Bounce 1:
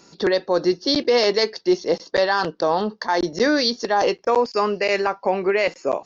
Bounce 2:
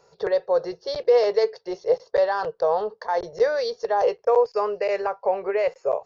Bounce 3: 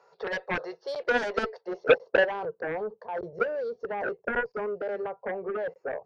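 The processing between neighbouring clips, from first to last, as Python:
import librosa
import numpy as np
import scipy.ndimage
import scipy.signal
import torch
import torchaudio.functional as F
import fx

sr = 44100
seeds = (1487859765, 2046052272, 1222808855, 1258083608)

y1 = fx.curve_eq(x, sr, hz=(130.0, 290.0, 440.0, 3200.0), db=(0, -26, 7, -9))
y1 = y1 * 10.0 ** (-5.0 / 20.0)
y2 = fx.filter_sweep_bandpass(y1, sr, from_hz=1200.0, to_hz=210.0, start_s=1.29, end_s=2.61, q=0.85)
y2 = fx.cheby_harmonics(y2, sr, harmonics=(7,), levels_db=(-10,), full_scale_db=-9.5)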